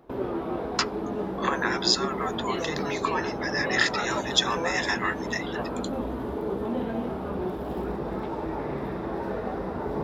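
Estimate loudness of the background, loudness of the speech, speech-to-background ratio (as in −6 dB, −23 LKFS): −31.5 LKFS, −28.0 LKFS, 3.5 dB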